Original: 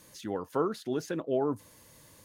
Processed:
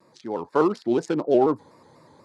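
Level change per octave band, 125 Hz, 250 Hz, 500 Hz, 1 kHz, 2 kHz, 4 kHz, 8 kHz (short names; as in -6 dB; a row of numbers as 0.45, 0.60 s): +4.5 dB, +9.5 dB, +9.0 dB, +10.0 dB, +7.0 dB, +3.0 dB, n/a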